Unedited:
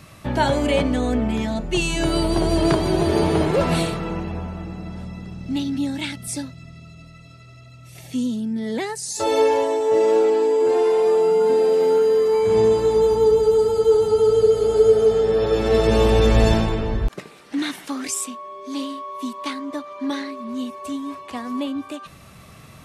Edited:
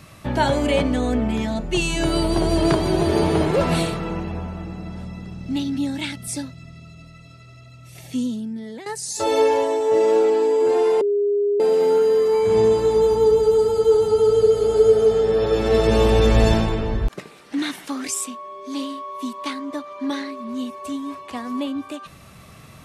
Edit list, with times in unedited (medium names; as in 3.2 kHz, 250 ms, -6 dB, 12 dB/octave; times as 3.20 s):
8.17–8.86 s: fade out, to -14.5 dB
11.01–11.60 s: bleep 408 Hz -16.5 dBFS